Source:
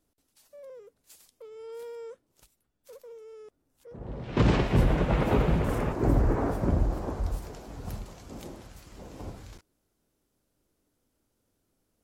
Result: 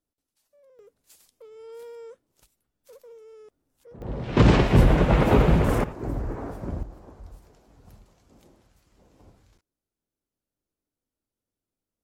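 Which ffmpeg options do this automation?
-af "asetnsamples=n=441:p=0,asendcmd='0.79 volume volume -1dB;4.02 volume volume 6dB;5.84 volume volume -6.5dB;6.83 volume volume -14dB',volume=-11.5dB"

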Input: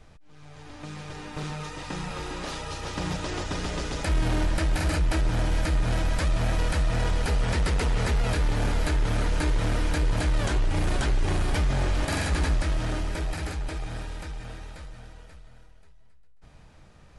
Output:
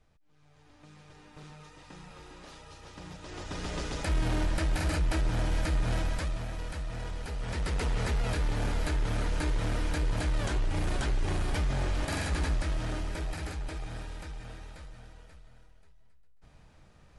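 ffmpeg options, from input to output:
-af "volume=3dB,afade=t=in:st=3.2:d=0.58:silence=0.281838,afade=t=out:st=5.97:d=0.5:silence=0.398107,afade=t=in:st=7.34:d=0.51:silence=0.446684"

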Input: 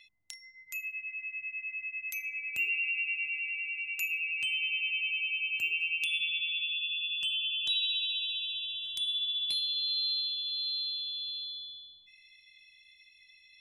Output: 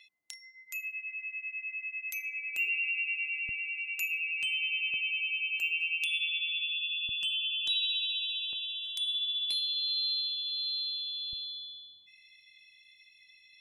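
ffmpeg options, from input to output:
-af "asetnsamples=n=441:p=0,asendcmd='3.49 highpass f 130;4.94 highpass f 440;7.09 highpass f 140;8.53 highpass f 520;9.15 highpass f 240;11.33 highpass f 93',highpass=300"

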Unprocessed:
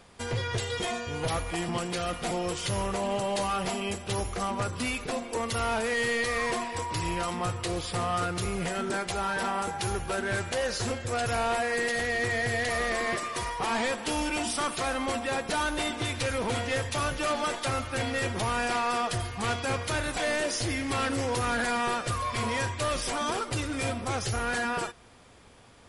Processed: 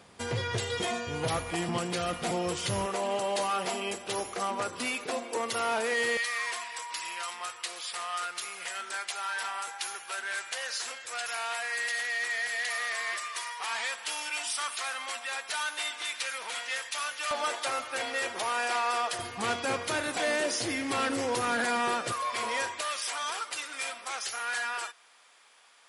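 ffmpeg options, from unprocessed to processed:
-af "asetnsamples=n=441:p=0,asendcmd='2.86 highpass f 310;6.17 highpass f 1300;17.31 highpass f 550;19.19 highpass f 210;22.12 highpass f 480;22.81 highpass f 1100',highpass=98"

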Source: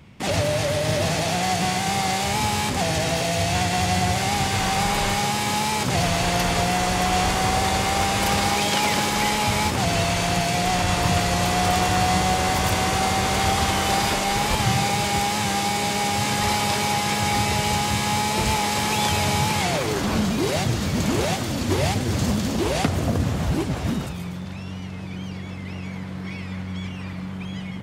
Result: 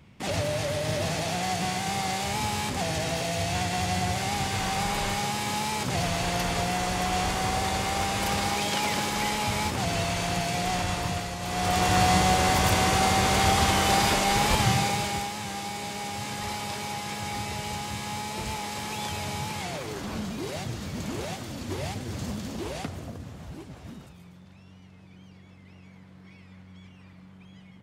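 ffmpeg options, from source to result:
-af "volume=6.5dB,afade=t=out:st=10.77:d=0.62:silence=0.421697,afade=t=in:st=11.39:d=0.59:silence=0.237137,afade=t=out:st=14.55:d=0.78:silence=0.316228,afade=t=out:st=22.67:d=0.52:silence=0.446684"

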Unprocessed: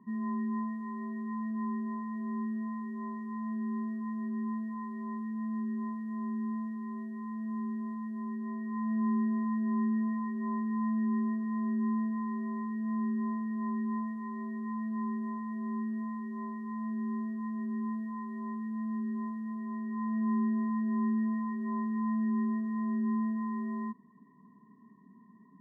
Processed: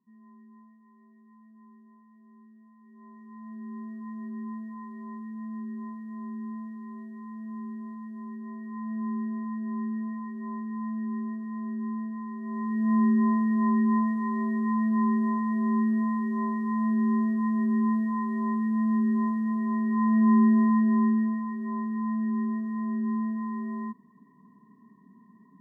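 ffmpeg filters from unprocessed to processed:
-af "volume=10dB,afade=t=in:st=2.77:d=0.48:silence=0.281838,afade=t=in:st=3.25:d=0.91:silence=0.446684,afade=t=in:st=12.41:d=0.54:silence=0.251189,afade=t=out:st=20.7:d=0.7:silence=0.398107"

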